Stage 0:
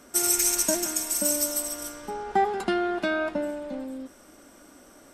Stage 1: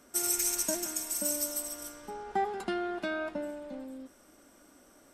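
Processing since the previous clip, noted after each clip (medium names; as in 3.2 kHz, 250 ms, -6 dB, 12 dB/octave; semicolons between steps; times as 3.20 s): treble shelf 12 kHz +3.5 dB; trim -7.5 dB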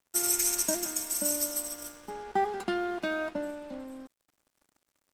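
crossover distortion -53 dBFS; trim +3 dB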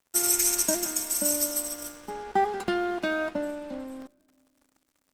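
on a send at -24 dB: reverberation RT60 2.0 s, pre-delay 4 ms; on the sum: crackling interface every 0.67 s, samples 64, zero, from 0.67 s; trim +3.5 dB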